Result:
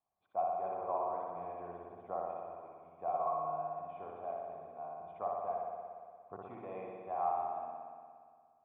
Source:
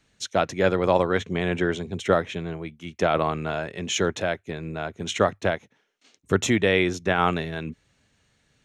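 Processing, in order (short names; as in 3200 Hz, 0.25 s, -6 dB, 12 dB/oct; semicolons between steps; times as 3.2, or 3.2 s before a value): vocal tract filter a; spring tank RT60 2 s, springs 58 ms, chirp 20 ms, DRR -2.5 dB; gain -6 dB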